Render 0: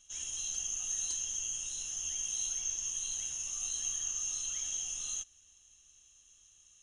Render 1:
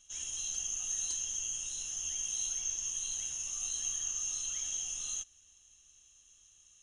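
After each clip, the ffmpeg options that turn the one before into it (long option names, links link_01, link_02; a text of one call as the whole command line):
ffmpeg -i in.wav -af anull out.wav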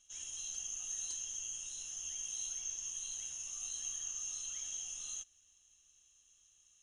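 ffmpeg -i in.wav -af "lowshelf=frequency=250:gain=-3.5,volume=-5.5dB" out.wav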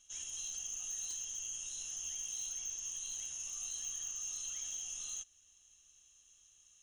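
ffmpeg -i in.wav -filter_complex "[0:a]asplit=2[link_01][link_02];[link_02]alimiter=level_in=13.5dB:limit=-24dB:level=0:latency=1:release=488,volume=-13.5dB,volume=0.5dB[link_03];[link_01][link_03]amix=inputs=2:normalize=0,volume=32dB,asoftclip=hard,volume=-32dB,volume=-3.5dB" out.wav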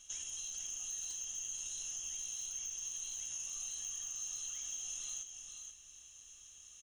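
ffmpeg -i in.wav -af "acompressor=threshold=-48dB:ratio=10,aecho=1:1:482:0.473,volume=7.5dB" out.wav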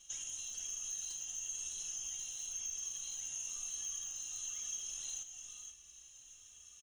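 ffmpeg -i in.wav -filter_complex "[0:a]asplit=2[link_01][link_02];[link_02]aeval=exprs='sgn(val(0))*max(abs(val(0))-0.00126,0)':channel_layout=same,volume=-11dB[link_03];[link_01][link_03]amix=inputs=2:normalize=0,asplit=2[link_04][link_05];[link_05]adelay=3.1,afreqshift=-1[link_06];[link_04][link_06]amix=inputs=2:normalize=1,volume=1dB" out.wav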